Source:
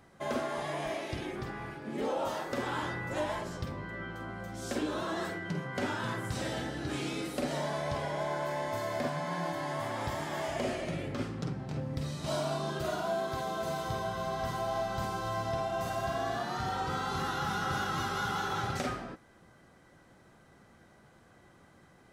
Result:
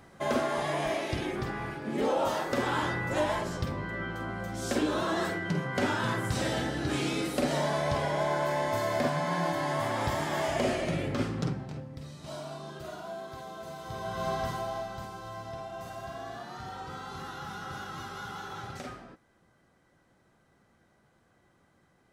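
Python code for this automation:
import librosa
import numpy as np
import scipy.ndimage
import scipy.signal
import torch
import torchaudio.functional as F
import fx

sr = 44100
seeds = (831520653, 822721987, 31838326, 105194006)

y = fx.gain(x, sr, db=fx.line((11.47, 5.0), (11.9, -7.5), (13.79, -7.5), (14.29, 4.0), (15.09, -7.0)))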